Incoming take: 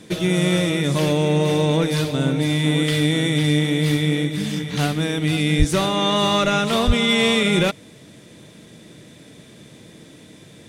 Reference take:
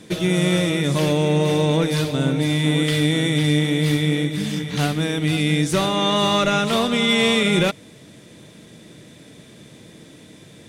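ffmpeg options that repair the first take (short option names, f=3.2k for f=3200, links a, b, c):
-filter_complex "[0:a]asplit=3[a][b][c];[a]afade=t=out:st=5.58:d=0.02[d];[b]highpass=f=140:w=0.5412,highpass=f=140:w=1.3066,afade=t=in:st=5.58:d=0.02,afade=t=out:st=5.7:d=0.02[e];[c]afade=t=in:st=5.7:d=0.02[f];[d][e][f]amix=inputs=3:normalize=0,asplit=3[g][h][i];[g]afade=t=out:st=6.86:d=0.02[j];[h]highpass=f=140:w=0.5412,highpass=f=140:w=1.3066,afade=t=in:st=6.86:d=0.02,afade=t=out:st=6.98:d=0.02[k];[i]afade=t=in:st=6.98:d=0.02[l];[j][k][l]amix=inputs=3:normalize=0"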